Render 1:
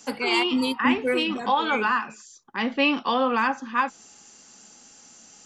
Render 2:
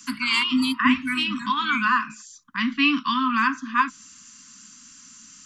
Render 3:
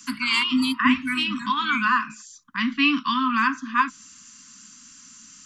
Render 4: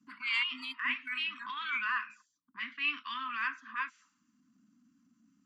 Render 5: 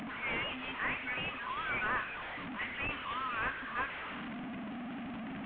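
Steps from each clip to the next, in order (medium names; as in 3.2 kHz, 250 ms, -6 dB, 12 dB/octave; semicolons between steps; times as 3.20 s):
Chebyshev band-stop 290–1000 Hz, order 5; trim +3.5 dB
no audible change
auto-wah 210–2100 Hz, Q 2, up, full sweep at -23.5 dBFS; transient shaper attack -8 dB, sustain -1 dB; trim -4.5 dB
one-bit delta coder 16 kbps, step -36.5 dBFS; trim +1 dB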